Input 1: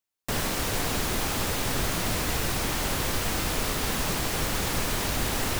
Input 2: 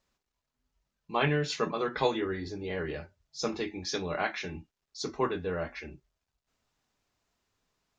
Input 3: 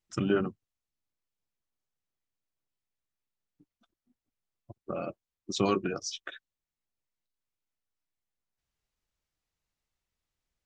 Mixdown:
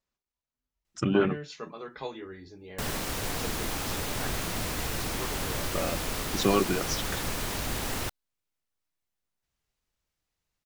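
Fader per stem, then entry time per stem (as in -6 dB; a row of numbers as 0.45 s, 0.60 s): -4.5 dB, -10.0 dB, +3.0 dB; 2.50 s, 0.00 s, 0.85 s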